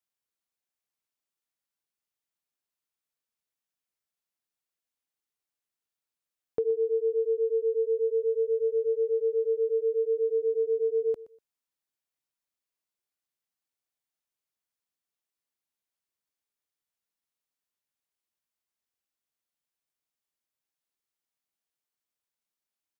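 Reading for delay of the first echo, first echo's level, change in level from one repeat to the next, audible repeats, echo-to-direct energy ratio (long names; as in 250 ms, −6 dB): 122 ms, −18.0 dB, −13.0 dB, 2, −18.0 dB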